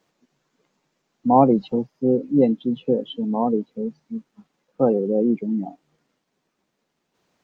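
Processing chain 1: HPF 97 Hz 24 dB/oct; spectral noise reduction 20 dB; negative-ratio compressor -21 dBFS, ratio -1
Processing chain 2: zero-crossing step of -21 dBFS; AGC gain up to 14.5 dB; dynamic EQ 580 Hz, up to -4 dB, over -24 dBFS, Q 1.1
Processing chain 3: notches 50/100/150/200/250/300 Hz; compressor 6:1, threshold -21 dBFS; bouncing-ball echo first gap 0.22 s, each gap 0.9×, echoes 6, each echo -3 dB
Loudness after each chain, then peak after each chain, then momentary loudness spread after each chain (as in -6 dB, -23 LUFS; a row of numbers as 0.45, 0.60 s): -24.5, -15.0, -25.5 LUFS; -9.0, -3.0, -10.5 dBFS; 9, 5, 10 LU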